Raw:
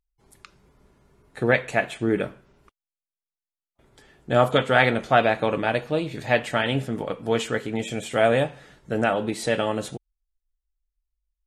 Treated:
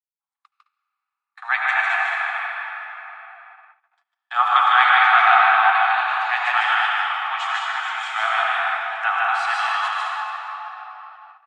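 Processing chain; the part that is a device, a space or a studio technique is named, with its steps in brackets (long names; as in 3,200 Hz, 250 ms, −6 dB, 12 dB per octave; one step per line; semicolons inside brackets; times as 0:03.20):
station announcement (band-pass filter 460–4,200 Hz; parametric band 1,200 Hz +9 dB 0.48 octaves; loudspeakers that aren't time-aligned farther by 52 metres −2 dB, 73 metres −6 dB; convolution reverb RT60 4.3 s, pre-delay 72 ms, DRR −2.5 dB)
noise gate −38 dBFS, range −33 dB
Butterworth high-pass 750 Hz 96 dB per octave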